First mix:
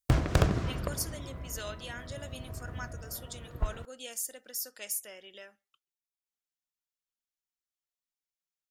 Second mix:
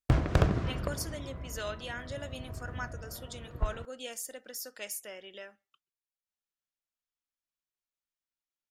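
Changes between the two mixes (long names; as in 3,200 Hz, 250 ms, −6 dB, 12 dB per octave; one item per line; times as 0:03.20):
speech +4.0 dB
master: add high-shelf EQ 5,000 Hz −11 dB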